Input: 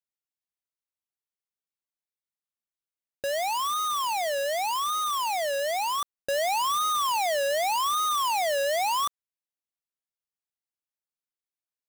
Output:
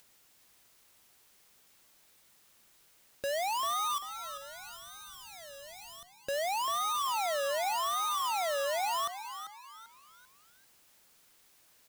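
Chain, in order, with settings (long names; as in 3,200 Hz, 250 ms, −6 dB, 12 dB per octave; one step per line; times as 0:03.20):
0:03.98–0:06.16: guitar amp tone stack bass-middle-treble 10-0-1
brickwall limiter −34 dBFS, peak gain reduction 8.5 dB
upward compression, threshold −44 dBFS
echo with shifted repeats 392 ms, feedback 37%, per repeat +110 Hz, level −10.5 dB
level +2 dB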